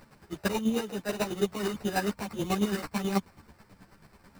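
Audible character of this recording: chopped level 9.2 Hz, depth 60%, duty 30%; aliases and images of a low sample rate 3.3 kHz, jitter 0%; a shimmering, thickened sound

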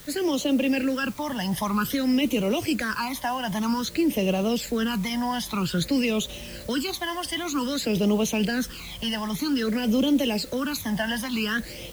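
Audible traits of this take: phasing stages 12, 0.52 Hz, lowest notch 410–1600 Hz; a quantiser's noise floor 8-bit, dither triangular

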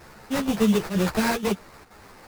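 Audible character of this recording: a quantiser's noise floor 8-bit, dither none; chopped level 2.1 Hz, depth 65%, duty 85%; aliases and images of a low sample rate 3.2 kHz, jitter 20%; a shimmering, thickened sound

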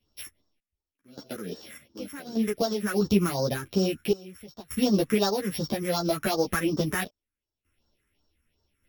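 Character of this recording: a buzz of ramps at a fixed pitch in blocks of 8 samples; phasing stages 4, 2.7 Hz, lowest notch 700–2300 Hz; random-step tremolo 1.7 Hz, depth 95%; a shimmering, thickened sound

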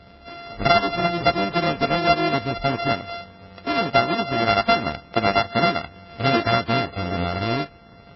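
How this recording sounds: a buzz of ramps at a fixed pitch in blocks of 64 samples; MP3

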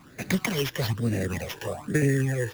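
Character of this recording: phasing stages 12, 1.1 Hz, lowest notch 210–1100 Hz; aliases and images of a low sample rate 8.6 kHz, jitter 0%

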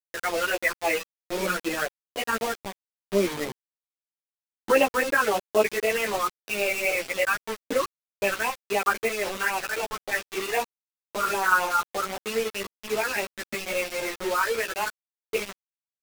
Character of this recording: phasing stages 12, 3.8 Hz, lowest notch 640–1600 Hz; a quantiser's noise floor 6-bit, dither none; a shimmering, thickened sound

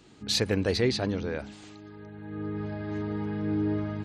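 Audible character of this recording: noise floor -52 dBFS; spectral tilt -5.0 dB/octave

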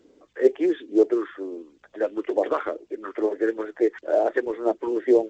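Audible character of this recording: phasing stages 2, 2.2 Hz, lowest notch 650–1300 Hz; A-law

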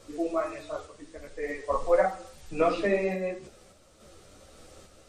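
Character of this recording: random-step tremolo; a shimmering, thickened sound

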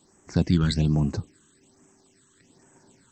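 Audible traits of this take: phasing stages 8, 1.2 Hz, lowest notch 660–4200 Hz

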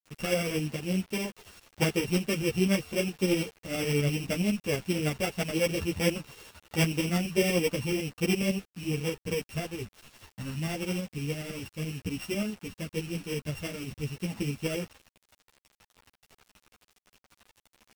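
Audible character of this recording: a buzz of ramps at a fixed pitch in blocks of 16 samples; tremolo saw up 12 Hz, depth 55%; a quantiser's noise floor 8-bit, dither none; a shimmering, thickened sound

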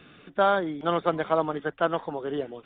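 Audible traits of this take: noise floor -55 dBFS; spectral tilt -4.0 dB/octave

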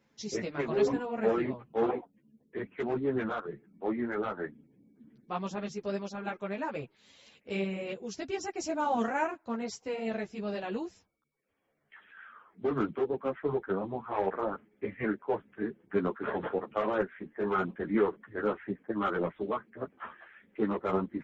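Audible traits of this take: a shimmering, thickened sound

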